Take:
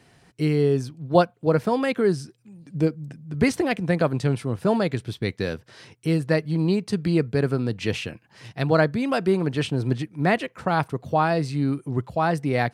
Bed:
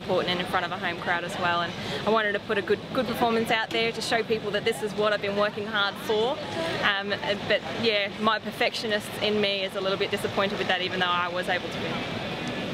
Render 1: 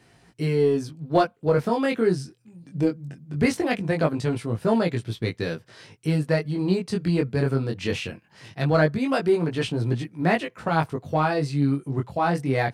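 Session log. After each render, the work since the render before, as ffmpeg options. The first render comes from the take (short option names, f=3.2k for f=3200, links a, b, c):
-filter_complex "[0:a]asplit=2[a][b];[b]volume=15dB,asoftclip=hard,volume=-15dB,volume=-9.5dB[c];[a][c]amix=inputs=2:normalize=0,flanger=delay=17.5:depth=5.1:speed=0.2"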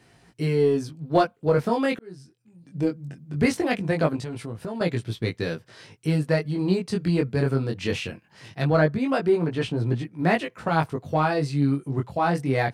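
-filter_complex "[0:a]asettb=1/sr,asplit=3[a][b][c];[a]atrim=end=4.164[d];[b]atrim=start=4.16:end=4.81,asetpts=PTS-STARTPTS,afade=t=in:d=0.004:c=qsin,afade=t=out:st=0.646:d=0.004:c=qsin,acompressor=threshold=-29dB:ratio=6:attack=3.2:release=140:knee=1:detection=peak[e];[c]atrim=start=4.806[f];[d][e]acrossfade=d=0.004:c1=hsin:c2=qsin[g];[g][f]acrossfade=d=0.004:c1=qsin:c2=hsin,asettb=1/sr,asplit=3[h][i][j];[h]atrim=end=8.674[k];[i]atrim=start=8.67:end=10.19,asetpts=PTS-STARTPTS,afade=t=in:d=0.004:c=qsin,afade=t=out:st=1.516:d=0.004:c=qsin,highshelf=f=3.4k:g=-6.5[l];[j]atrim=start=10.186[m];[k][l]acrossfade=d=0.004:c1=hsin:c2=qsin[n];[n][m]acrossfade=d=0.004:c1=qsin:c2=hsin,asplit=2[o][p];[o]atrim=end=1.99,asetpts=PTS-STARTPTS,afade=t=out:st=1.986:d=0.004:c=hsin[q];[p]atrim=start=1.99,asetpts=PTS-STARTPTS,afade=t=in:d=1.07[r];[q][r]concat=n=2:v=0:a=1"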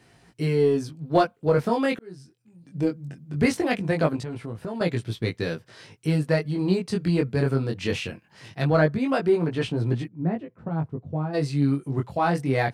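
-filter_complex "[0:a]asettb=1/sr,asplit=3[a][b][c];[a]atrim=end=4.234[d];[b]atrim=start=4.23:end=4.74,asetpts=PTS-STARTPTS,afade=t=in:d=0.004:c=qsin,afade=t=out:st=0.506:d=0.004:c=qsin,acrossover=split=2500[e][f];[f]acompressor=threshold=-54dB:ratio=4:attack=1:release=60[g];[e][g]amix=inputs=2:normalize=0[h];[c]atrim=start=4.736[i];[d][h]acrossfade=d=0.004:c1=hsin:c2=qsin[j];[j][i]acrossfade=d=0.004:c1=qsin:c2=hsin,asplit=3[k][l][m];[k]afade=t=out:st=10.07:d=0.02[n];[l]bandpass=f=120:t=q:w=0.6,afade=t=in:st=10.07:d=0.02,afade=t=out:st=11.33:d=0.02[o];[m]afade=t=in:st=11.33:d=0.02[p];[n][o][p]amix=inputs=3:normalize=0"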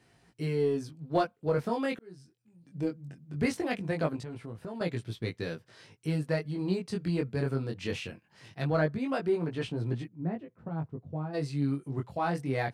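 -af "volume=-7.5dB"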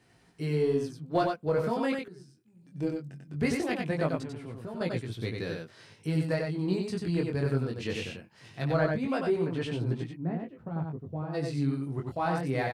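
-af "aecho=1:1:93:0.631"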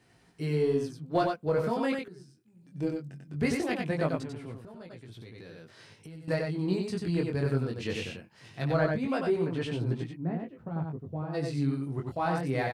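-filter_complex "[0:a]asettb=1/sr,asplit=3[a][b][c];[a]atrim=end=4.574[d];[b]atrim=start=4.57:end=6.28,asetpts=PTS-STARTPTS,afade=t=in:d=0.004:c=qsin,afade=t=out:st=1.706:d=0.004:c=qsin,acompressor=threshold=-43dB:ratio=8:attack=3.2:release=140:knee=1:detection=peak[e];[c]atrim=start=6.276[f];[d][e]acrossfade=d=0.004:c1=hsin:c2=qsin[g];[g][f]acrossfade=d=0.004:c1=qsin:c2=hsin"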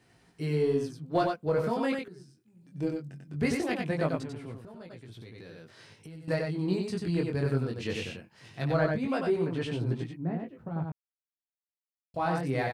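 -filter_complex "[0:a]asplit=3[a][b][c];[a]atrim=end=10.92,asetpts=PTS-STARTPTS,afade=t=out:st=10.916:d=0.004:c=hsin[d];[b]atrim=start=10.92:end=12.14,asetpts=PTS-STARTPTS,volume=0[e];[c]atrim=start=12.14,asetpts=PTS-STARTPTS,afade=t=in:d=0.004:c=hsin[f];[d][e][f]concat=n=3:v=0:a=1"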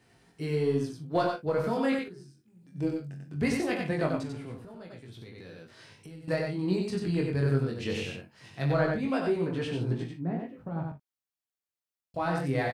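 -filter_complex "[0:a]asplit=2[a][b];[b]adelay=22,volume=-10.5dB[c];[a][c]amix=inputs=2:normalize=0,aecho=1:1:42|56:0.251|0.188"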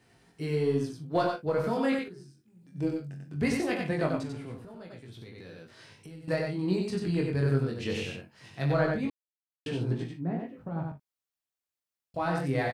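-filter_complex "[0:a]asplit=3[a][b][c];[a]atrim=end=9.1,asetpts=PTS-STARTPTS,afade=t=out:st=9.096:d=0.004:c=hsin[d];[b]atrim=start=9.1:end=9.66,asetpts=PTS-STARTPTS,volume=0[e];[c]atrim=start=9.66,asetpts=PTS-STARTPTS,afade=t=in:d=0.004:c=hsin[f];[d][e][f]concat=n=3:v=0:a=1"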